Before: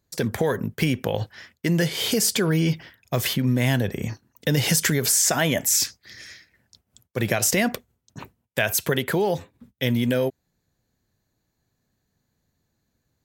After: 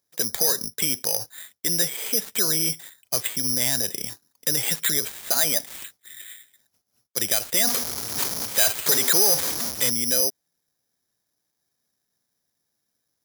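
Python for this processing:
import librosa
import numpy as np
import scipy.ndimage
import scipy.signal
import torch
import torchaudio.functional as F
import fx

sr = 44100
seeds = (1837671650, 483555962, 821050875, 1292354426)

y = fx.zero_step(x, sr, step_db=-20.0, at=(7.67, 9.9))
y = fx.highpass(y, sr, hz=510.0, slope=6)
y = np.clip(y, -10.0 ** (-18.0 / 20.0), 10.0 ** (-18.0 / 20.0))
y = (np.kron(scipy.signal.resample_poly(y, 1, 8), np.eye(8)[0]) * 8)[:len(y)]
y = y * 10.0 ** (-4.0 / 20.0)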